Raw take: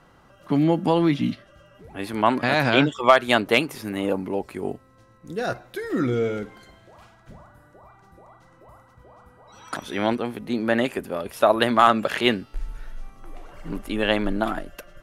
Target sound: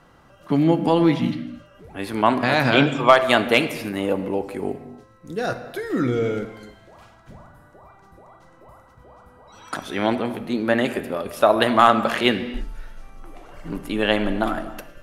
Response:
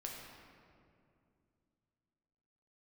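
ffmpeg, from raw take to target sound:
-filter_complex "[0:a]asplit=2[a][b];[1:a]atrim=start_sample=2205,afade=t=out:st=0.37:d=0.01,atrim=end_sample=16758[c];[b][c]afir=irnorm=-1:irlink=0,volume=-2.5dB[d];[a][d]amix=inputs=2:normalize=0,volume=-1.5dB"

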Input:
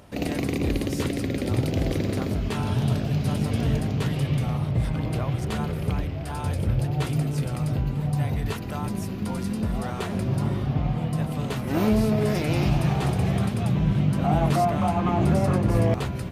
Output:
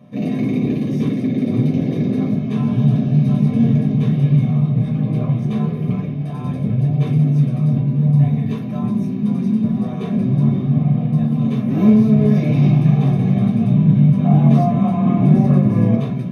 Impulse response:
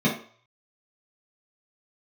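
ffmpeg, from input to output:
-filter_complex "[1:a]atrim=start_sample=2205[a];[0:a][a]afir=irnorm=-1:irlink=0,volume=-16dB"

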